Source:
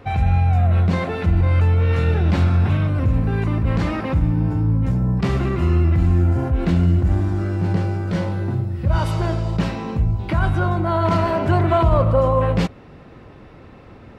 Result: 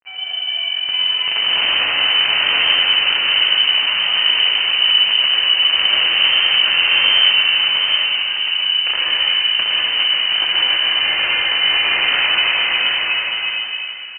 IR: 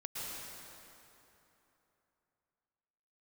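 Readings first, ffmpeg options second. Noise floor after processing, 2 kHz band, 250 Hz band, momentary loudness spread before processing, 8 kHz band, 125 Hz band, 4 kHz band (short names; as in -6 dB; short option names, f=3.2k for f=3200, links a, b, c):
-25 dBFS, +16.5 dB, under -20 dB, 6 LU, n/a, under -30 dB, +31.0 dB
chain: -filter_complex "[0:a]dynaudnorm=f=230:g=9:m=5dB,acrusher=bits=5:mix=0:aa=0.000001,aeval=exprs='(mod(2.24*val(0)+1,2)-1)/2.24':c=same,asplit=2[a][b];[b]adelay=17,volume=-12dB[c];[a][c]amix=inputs=2:normalize=0,aecho=1:1:724:0.668[d];[1:a]atrim=start_sample=2205[e];[d][e]afir=irnorm=-1:irlink=0,lowpass=f=2.6k:t=q:w=0.5098,lowpass=f=2.6k:t=q:w=0.6013,lowpass=f=2.6k:t=q:w=0.9,lowpass=f=2.6k:t=q:w=2.563,afreqshift=-3100,volume=-4.5dB"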